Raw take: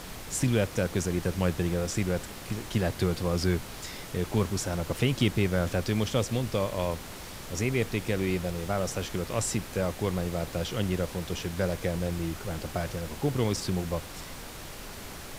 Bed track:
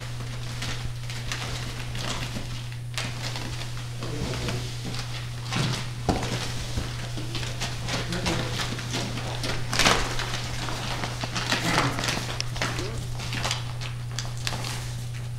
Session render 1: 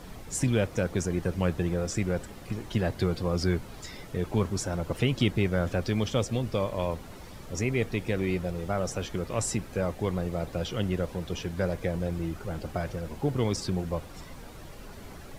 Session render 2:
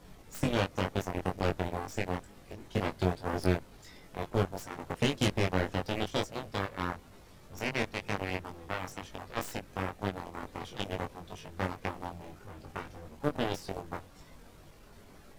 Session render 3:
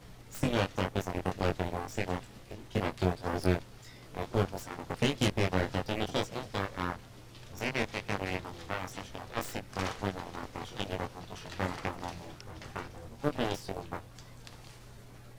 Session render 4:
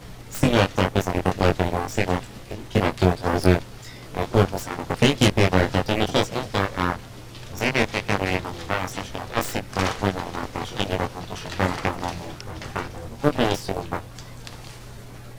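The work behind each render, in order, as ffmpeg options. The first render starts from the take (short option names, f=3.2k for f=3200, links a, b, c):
-af "afftdn=nr=10:nf=-42"
-af "aeval=exprs='0.282*(cos(1*acos(clip(val(0)/0.282,-1,1)))-cos(1*PI/2))+0.0282*(cos(5*acos(clip(val(0)/0.282,-1,1)))-cos(5*PI/2))+0.0794*(cos(7*acos(clip(val(0)/0.282,-1,1)))-cos(7*PI/2))+0.0158*(cos(8*acos(clip(val(0)/0.282,-1,1)))-cos(8*PI/2))':c=same,flanger=delay=20:depth=2:speed=2.1"
-filter_complex "[1:a]volume=-22dB[a];[0:a][a]amix=inputs=2:normalize=0"
-af "volume=11dB,alimiter=limit=-2dB:level=0:latency=1"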